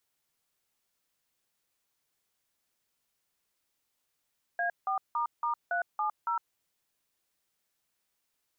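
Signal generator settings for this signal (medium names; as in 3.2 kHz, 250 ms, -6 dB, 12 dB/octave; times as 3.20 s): DTMF "A4**370", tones 109 ms, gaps 171 ms, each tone -30 dBFS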